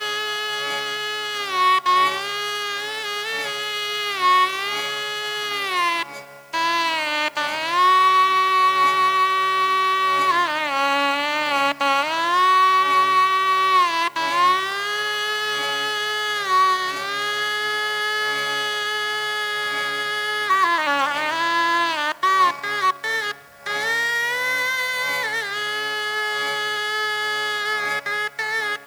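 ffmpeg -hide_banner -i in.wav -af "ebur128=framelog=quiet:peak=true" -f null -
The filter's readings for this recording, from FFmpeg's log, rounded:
Integrated loudness:
  I:         -20.0 LUFS
  Threshold: -30.1 LUFS
Loudness range:
  LRA:         4.5 LU
  Threshold: -39.9 LUFS
  LRA low:   -22.0 LUFS
  LRA high:  -17.5 LUFS
True peak:
  Peak:       -5.7 dBFS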